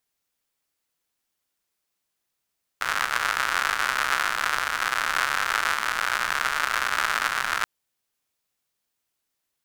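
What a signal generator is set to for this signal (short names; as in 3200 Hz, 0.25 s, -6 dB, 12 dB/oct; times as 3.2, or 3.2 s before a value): rain from filtered ticks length 4.83 s, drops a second 150, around 1400 Hz, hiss -22 dB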